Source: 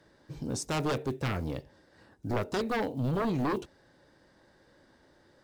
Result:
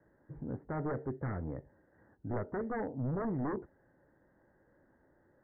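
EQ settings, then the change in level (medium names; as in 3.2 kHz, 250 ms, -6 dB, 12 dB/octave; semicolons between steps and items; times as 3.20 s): steep low-pass 2 kHz 96 dB/octave; distance through air 430 m; peaking EQ 1.1 kHz -3.5 dB 0.26 oct; -4.5 dB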